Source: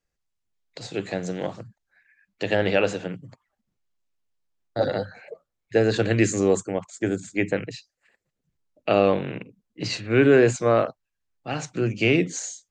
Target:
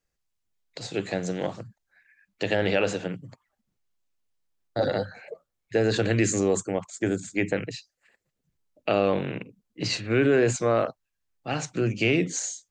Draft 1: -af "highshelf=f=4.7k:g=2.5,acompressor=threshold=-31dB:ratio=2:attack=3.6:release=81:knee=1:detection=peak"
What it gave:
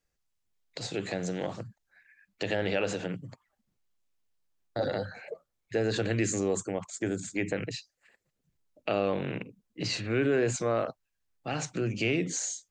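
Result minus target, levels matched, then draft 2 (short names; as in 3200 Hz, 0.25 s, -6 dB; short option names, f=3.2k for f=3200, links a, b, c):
compressor: peak gain reduction +5.5 dB
-af "highshelf=f=4.7k:g=2.5,acompressor=threshold=-20dB:ratio=2:attack=3.6:release=81:knee=1:detection=peak"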